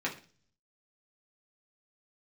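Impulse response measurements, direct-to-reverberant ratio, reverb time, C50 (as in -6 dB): -4.5 dB, 0.40 s, 12.0 dB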